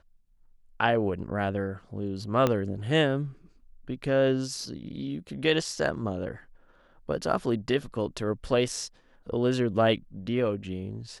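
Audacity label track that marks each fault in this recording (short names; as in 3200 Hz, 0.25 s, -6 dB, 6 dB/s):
2.470000	2.470000	pop -11 dBFS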